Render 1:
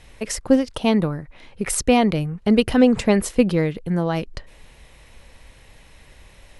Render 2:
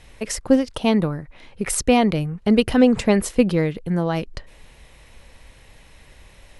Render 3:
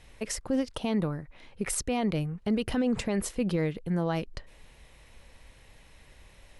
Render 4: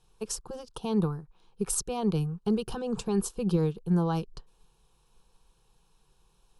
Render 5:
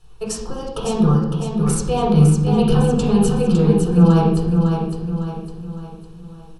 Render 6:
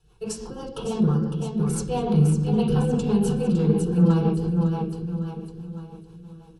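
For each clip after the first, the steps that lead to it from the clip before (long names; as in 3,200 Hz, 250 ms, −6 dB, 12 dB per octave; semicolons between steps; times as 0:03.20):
no processing that can be heard
brickwall limiter −12.5 dBFS, peak gain reduction 10 dB; level −6.5 dB
phaser with its sweep stopped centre 400 Hz, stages 8; expander for the loud parts 1.5 to 1, over −52 dBFS; level +5 dB
brickwall limiter −23.5 dBFS, peak gain reduction 8 dB; repeating echo 556 ms, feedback 43%, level −6 dB; convolution reverb RT60 0.85 s, pre-delay 3 ms, DRR −4.5 dB; level +4.5 dB
rotating-speaker cabinet horn 6 Hz; notch comb filter 610 Hz; in parallel at −9.5 dB: soft clipping −17 dBFS, distortion −9 dB; on the sum: level −5.5 dB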